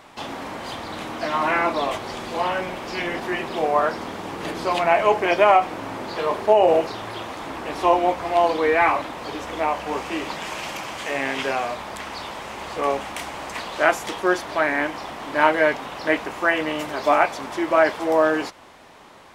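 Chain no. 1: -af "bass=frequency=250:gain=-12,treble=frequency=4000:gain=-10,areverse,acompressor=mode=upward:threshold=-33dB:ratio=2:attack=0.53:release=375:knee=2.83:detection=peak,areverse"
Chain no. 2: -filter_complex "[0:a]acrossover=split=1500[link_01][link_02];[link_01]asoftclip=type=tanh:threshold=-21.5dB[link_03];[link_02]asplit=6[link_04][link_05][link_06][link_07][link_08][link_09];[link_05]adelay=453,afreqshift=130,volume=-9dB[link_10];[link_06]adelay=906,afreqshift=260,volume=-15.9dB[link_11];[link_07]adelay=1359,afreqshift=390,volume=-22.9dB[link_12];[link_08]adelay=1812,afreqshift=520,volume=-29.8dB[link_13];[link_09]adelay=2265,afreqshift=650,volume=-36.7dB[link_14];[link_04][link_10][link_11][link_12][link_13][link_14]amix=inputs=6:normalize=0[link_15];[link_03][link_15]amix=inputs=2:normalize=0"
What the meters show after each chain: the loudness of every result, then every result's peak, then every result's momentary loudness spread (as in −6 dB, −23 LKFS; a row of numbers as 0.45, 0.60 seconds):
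−23.0, −26.0 LKFS; −2.5, −8.0 dBFS; 15, 9 LU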